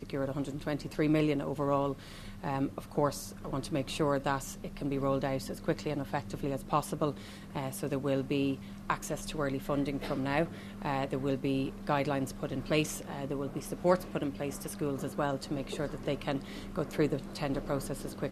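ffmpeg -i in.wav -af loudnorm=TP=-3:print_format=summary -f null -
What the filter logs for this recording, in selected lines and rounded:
Input Integrated:    -33.9 LUFS
Input True Peak:     -12.9 dBTP
Input LRA:             2.4 LU
Input Threshold:     -44.0 LUFS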